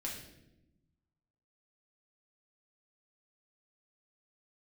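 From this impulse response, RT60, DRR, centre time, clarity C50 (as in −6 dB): 0.90 s, −3.5 dB, 40 ms, 4.0 dB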